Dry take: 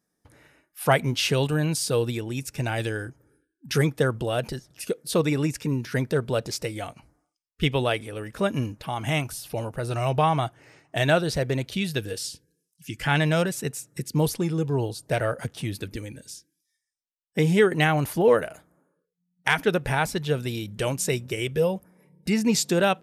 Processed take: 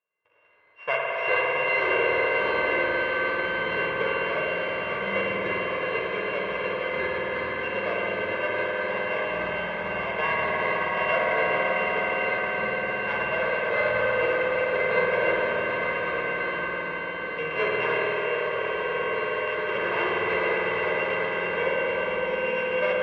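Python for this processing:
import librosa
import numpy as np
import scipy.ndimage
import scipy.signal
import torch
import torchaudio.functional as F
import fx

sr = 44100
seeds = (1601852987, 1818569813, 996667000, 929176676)

y = np.r_[np.sort(x[:len(x) // 16 * 16].reshape(-1, 16), axis=1).ravel(), x[len(x) // 16 * 16:]]
y = scipy.signal.sosfilt(scipy.signal.butter(2, 640.0, 'highpass', fs=sr, output='sos'), y)
y = fx.echo_swell(y, sr, ms=112, loudest=5, wet_db=-8.5)
y = fx.echo_pitch(y, sr, ms=107, semitones=-5, count=3, db_per_echo=-3.0)
y = fx.level_steps(y, sr, step_db=14, at=(17.97, 19.69))
y = scipy.signal.sosfilt(scipy.signal.butter(4, 2500.0, 'lowpass', fs=sr, output='sos'), y)
y = y + 0.81 * np.pad(y, (int(1.9 * sr / 1000.0), 0))[:len(y)]
y = fx.rev_spring(y, sr, rt60_s=3.4, pass_ms=(51,), chirp_ms=50, drr_db=-2.5)
y = F.gain(torch.from_numpy(y), -6.0).numpy()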